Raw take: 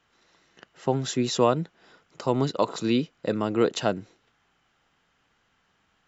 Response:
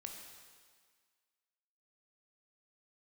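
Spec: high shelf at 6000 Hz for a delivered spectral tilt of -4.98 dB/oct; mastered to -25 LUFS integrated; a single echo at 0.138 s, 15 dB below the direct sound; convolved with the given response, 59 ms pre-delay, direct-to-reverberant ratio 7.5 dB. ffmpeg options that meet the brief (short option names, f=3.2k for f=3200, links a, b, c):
-filter_complex "[0:a]highshelf=f=6k:g=5.5,aecho=1:1:138:0.178,asplit=2[a][b];[1:a]atrim=start_sample=2205,adelay=59[c];[b][c]afir=irnorm=-1:irlink=0,volume=-4dB[d];[a][d]amix=inputs=2:normalize=0,volume=0.5dB"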